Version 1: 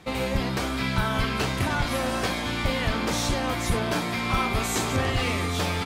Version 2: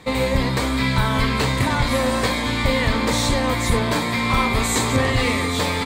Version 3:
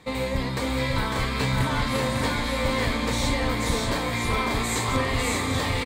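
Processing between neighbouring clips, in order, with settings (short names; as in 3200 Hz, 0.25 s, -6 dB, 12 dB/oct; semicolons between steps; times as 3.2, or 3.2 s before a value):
ripple EQ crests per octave 1, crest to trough 7 dB; gain +5 dB
tapped delay 0.551/0.588 s -5/-5 dB; gain -7 dB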